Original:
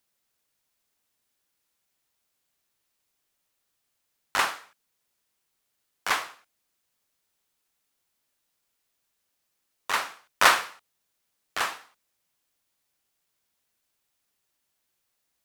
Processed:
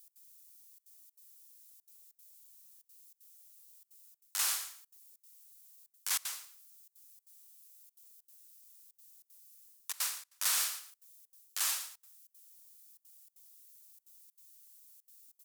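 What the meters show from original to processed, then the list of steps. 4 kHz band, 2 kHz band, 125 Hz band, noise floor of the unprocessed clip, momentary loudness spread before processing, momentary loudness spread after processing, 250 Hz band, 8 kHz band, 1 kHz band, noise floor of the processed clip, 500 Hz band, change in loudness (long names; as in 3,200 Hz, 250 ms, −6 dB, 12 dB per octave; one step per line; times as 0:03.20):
−6.5 dB, −16.5 dB, can't be measured, −78 dBFS, 23 LU, 17 LU, below −25 dB, +2.5 dB, −20.5 dB, −83 dBFS, −25.0 dB, −8.0 dB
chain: bass and treble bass −15 dB, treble +9 dB
reversed playback
downward compressor 6 to 1, threshold −33 dBFS, peak gain reduction 20.5 dB
reversed playback
first-order pre-emphasis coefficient 0.9
on a send: repeating echo 113 ms, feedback 20%, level −11 dB
on the sum: gate pattern "x.xxxxxxxx.xx" 192 BPM −24 dB
level +7 dB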